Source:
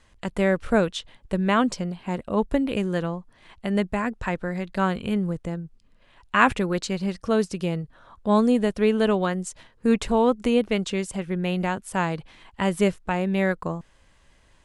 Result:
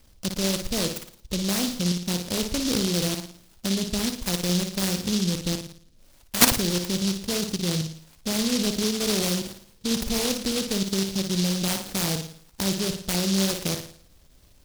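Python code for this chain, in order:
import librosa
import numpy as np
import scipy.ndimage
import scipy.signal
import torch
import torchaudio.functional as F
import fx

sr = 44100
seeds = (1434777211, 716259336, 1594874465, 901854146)

y = fx.peak_eq(x, sr, hz=1800.0, db=-12.0, octaves=2.1, at=(3.73, 4.21))
y = fx.level_steps(y, sr, step_db=15)
y = fx.sample_hold(y, sr, seeds[0], rate_hz=8200.0, jitter_pct=0)
y = fx.air_absorb(y, sr, metres=340.0)
y = fx.room_flutter(y, sr, wall_m=9.7, rt60_s=0.53)
y = fx.noise_mod_delay(y, sr, seeds[1], noise_hz=4400.0, depth_ms=0.29)
y = y * librosa.db_to_amplitude(5.5)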